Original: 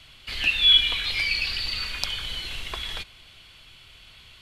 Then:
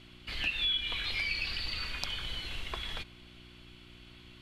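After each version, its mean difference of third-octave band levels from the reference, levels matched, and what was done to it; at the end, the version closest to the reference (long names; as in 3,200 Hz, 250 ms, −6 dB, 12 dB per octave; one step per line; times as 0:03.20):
6.0 dB: high-shelf EQ 3,400 Hz −7.5 dB
downward compressor 6 to 1, threshold −25 dBFS, peak gain reduction 9 dB
hum with harmonics 60 Hz, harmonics 6, −53 dBFS −2 dB per octave
level −3.5 dB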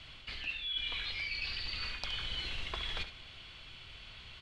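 7.5 dB: reversed playback
downward compressor 20 to 1, threshold −33 dBFS, peak gain reduction 21 dB
reversed playback
high-frequency loss of the air 94 metres
single-tap delay 70 ms −11 dB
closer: first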